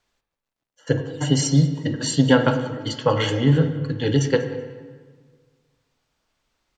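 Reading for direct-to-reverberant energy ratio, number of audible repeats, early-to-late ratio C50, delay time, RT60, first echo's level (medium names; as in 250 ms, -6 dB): 7.0 dB, 1, 8.5 dB, 191 ms, 1.6 s, -20.0 dB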